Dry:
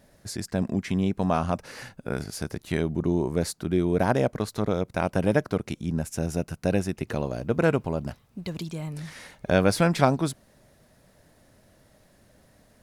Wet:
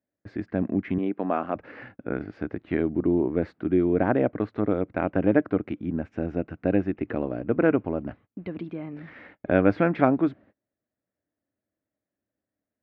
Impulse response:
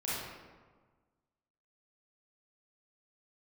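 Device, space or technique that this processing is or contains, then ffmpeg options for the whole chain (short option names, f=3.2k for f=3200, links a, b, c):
bass cabinet: -filter_complex "[0:a]highpass=88,equalizer=f=150:t=q:w=4:g=-9,equalizer=f=300:t=q:w=4:g=9,equalizer=f=960:t=q:w=4:g=-5,lowpass=f=2.3k:w=0.5412,lowpass=f=2.3k:w=1.3066,agate=range=-29dB:threshold=-49dB:ratio=16:detection=peak,asettb=1/sr,asplit=3[a][b][c];[a]atrim=end=0.984[d];[b]atrim=start=0.98:end=1.56,asetpts=PTS-STARTPTS,afade=t=in:d=0.004:c=qsin,afade=t=out:st=0.576:d=0.004:c=qsin,highpass=280[e];[c]atrim=start=1.556[f];[d][e]acrossfade=d=0.004:c1=hsin:c2=qsin[g];[g][f]acrossfade=d=0.004:c1=qsin:c2=hsin"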